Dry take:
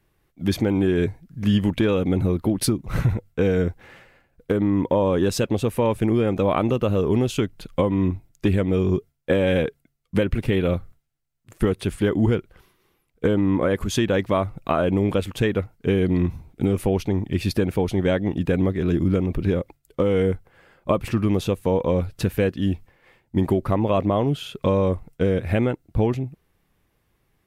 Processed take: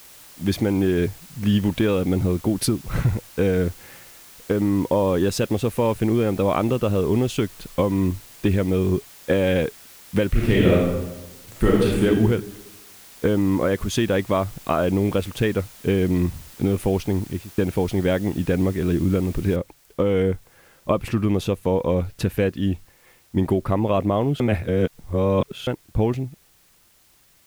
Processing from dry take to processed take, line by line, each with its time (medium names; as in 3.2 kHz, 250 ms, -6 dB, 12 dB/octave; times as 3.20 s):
10.29–12.05 s: reverb throw, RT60 1.1 s, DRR -4.5 dB
17.16–17.58 s: studio fade out
19.56 s: noise floor step -46 dB -58 dB
24.40–25.67 s: reverse